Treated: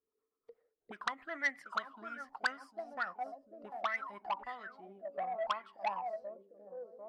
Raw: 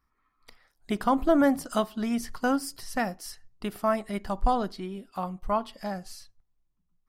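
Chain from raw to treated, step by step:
tape delay 747 ms, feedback 66%, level −11.5 dB, low-pass 2,100 Hz
rotating-speaker cabinet horn 8 Hz, later 0.65 Hz, at 0:02.36
envelope filter 440–2,000 Hz, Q 20, up, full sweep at −23 dBFS
saturating transformer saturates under 2,700 Hz
level +14.5 dB

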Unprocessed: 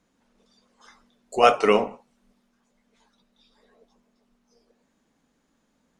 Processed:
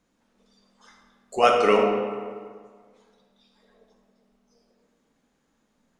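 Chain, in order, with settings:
comb and all-pass reverb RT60 1.8 s, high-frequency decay 0.6×, pre-delay 0 ms, DRR 2.5 dB
level −2 dB

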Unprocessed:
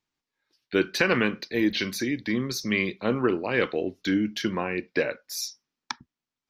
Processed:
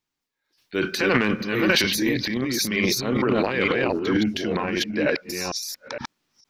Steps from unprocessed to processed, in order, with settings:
delay that plays each chunk backwards 460 ms, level −1 dB
high-shelf EQ 8,600 Hz +6 dB, from 0:03.93 −2.5 dB
transient designer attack −4 dB, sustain +12 dB

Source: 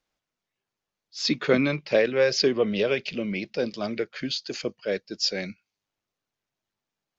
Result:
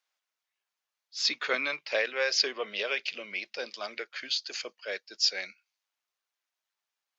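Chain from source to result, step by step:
high-pass filter 920 Hz 12 dB per octave

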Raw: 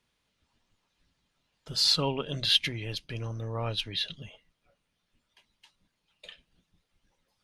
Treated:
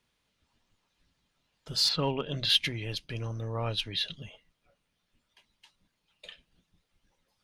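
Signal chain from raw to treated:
0:01.88–0:02.48: low-pass filter 2,800 Hz → 5,600 Hz 12 dB per octave
in parallel at −9 dB: gain into a clipping stage and back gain 22.5 dB
on the sum: level −2.5 dB

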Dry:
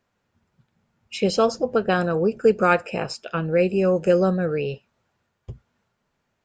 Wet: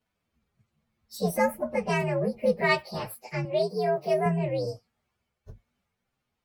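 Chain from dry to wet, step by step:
partials spread apart or drawn together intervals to 126%
0:03.45–0:04.26: high-pass filter 420 Hz 6 dB per octave
level −3 dB

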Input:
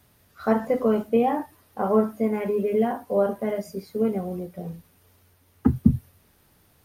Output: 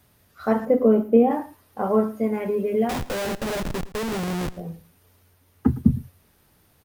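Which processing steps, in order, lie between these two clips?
0:00.65–0:01.31: graphic EQ with 10 bands 125 Hz −6 dB, 250 Hz +7 dB, 500 Hz +4 dB, 1,000 Hz −4 dB, 2,000 Hz −3 dB, 4,000 Hz −8 dB, 8,000 Hz −10 dB
0:02.89–0:04.57: comparator with hysteresis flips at −36 dBFS
single-tap delay 111 ms −18.5 dB

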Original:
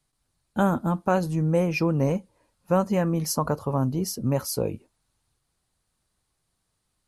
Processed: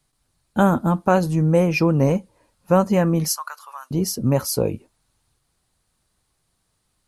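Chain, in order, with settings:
0:03.28–0:03.91: high-pass filter 1,300 Hz 24 dB per octave
level +5.5 dB

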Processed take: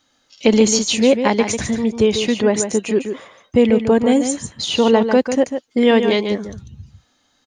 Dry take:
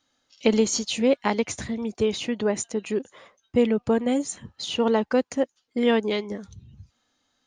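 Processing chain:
dynamic equaliser 1,300 Hz, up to −5 dB, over −49 dBFS, Q 5.8
in parallel at −1.5 dB: brickwall limiter −17 dBFS, peak gain reduction 9.5 dB
on the sum: single-tap delay 145 ms −8 dB
level +3.5 dB

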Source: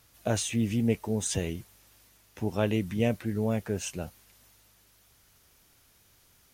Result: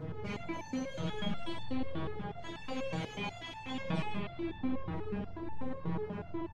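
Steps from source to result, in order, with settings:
frequency axis turned over on the octave scale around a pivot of 1,200 Hz
low-pass that shuts in the quiet parts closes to 2,100 Hz, open at −25.5 dBFS
power curve on the samples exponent 0.35
soft clipping −30.5 dBFS, distortion −8 dB
spring reverb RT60 2.8 s, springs 35/46 ms, chirp 50 ms, DRR −6 dB
auto-filter notch saw down 8.9 Hz 260–3,200 Hz
head-to-tape spacing loss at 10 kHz 29 dB
on a send: single-tap delay 108 ms −7.5 dB
on the sum: step-sequenced resonator 8.2 Hz 160–880 Hz
level +6.5 dB

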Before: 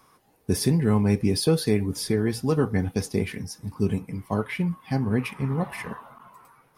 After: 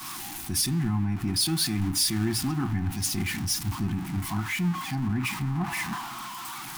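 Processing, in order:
converter with a step at zero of −26.5 dBFS
elliptic band-stop filter 350–730 Hz, stop band 40 dB
brickwall limiter −20.5 dBFS, peak gain reduction 9.5 dB
on a send at −18 dB: convolution reverb RT60 0.30 s, pre-delay 3 ms
on the sum: multiband upward and downward expander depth 100%

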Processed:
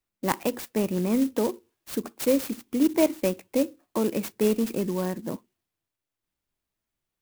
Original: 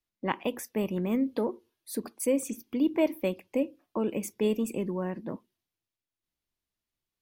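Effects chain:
converter with an unsteady clock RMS 0.059 ms
level +4 dB

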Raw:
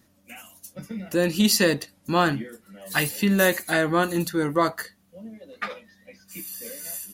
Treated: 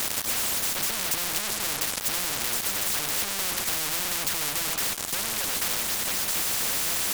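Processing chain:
parametric band 7,700 Hz +14 dB 0.52 octaves
treble cut that deepens with the level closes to 370 Hz, closed at −16 dBFS
low-shelf EQ 180 Hz −9.5 dB
in parallel at +1 dB: compressor whose output falls as the input rises −28 dBFS
on the sum: fuzz pedal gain 47 dB, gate −53 dBFS
every bin compressed towards the loudest bin 10 to 1
level +2 dB

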